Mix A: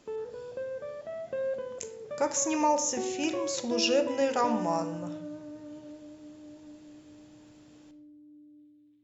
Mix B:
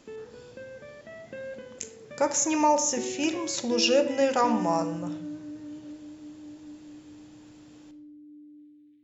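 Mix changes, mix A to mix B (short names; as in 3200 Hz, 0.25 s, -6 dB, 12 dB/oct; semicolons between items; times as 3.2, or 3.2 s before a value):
speech +3.5 dB; background: add graphic EQ 125/250/500/1000/2000 Hz -4/+10/-7/-11/+9 dB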